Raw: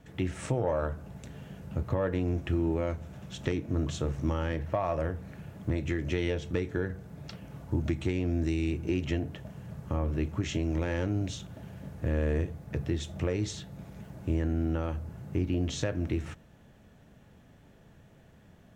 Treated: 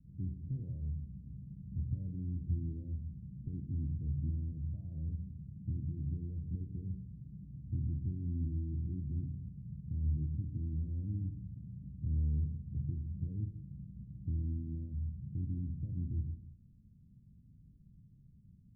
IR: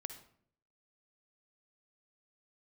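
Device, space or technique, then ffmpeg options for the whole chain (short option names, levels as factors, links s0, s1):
club heard from the street: -filter_complex "[0:a]alimiter=limit=0.075:level=0:latency=1,lowpass=f=200:w=0.5412,lowpass=f=200:w=1.3066[s0];[1:a]atrim=start_sample=2205[s1];[s0][s1]afir=irnorm=-1:irlink=0,volume=1.12"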